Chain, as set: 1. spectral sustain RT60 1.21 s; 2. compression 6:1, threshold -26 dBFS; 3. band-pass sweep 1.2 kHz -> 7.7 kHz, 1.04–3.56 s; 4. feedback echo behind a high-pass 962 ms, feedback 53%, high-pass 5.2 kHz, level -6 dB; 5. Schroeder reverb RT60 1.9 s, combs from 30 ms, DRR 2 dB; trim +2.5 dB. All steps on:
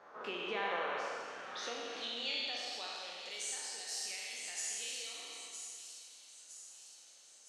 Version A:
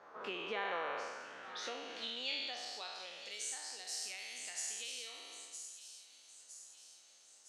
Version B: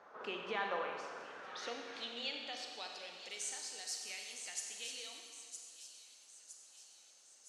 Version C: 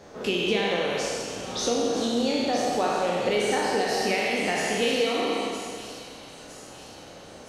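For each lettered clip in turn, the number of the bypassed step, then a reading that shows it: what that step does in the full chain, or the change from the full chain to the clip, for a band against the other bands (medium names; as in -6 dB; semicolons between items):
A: 5, momentary loudness spread change +1 LU; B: 1, loudness change -3.0 LU; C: 3, 250 Hz band +13.0 dB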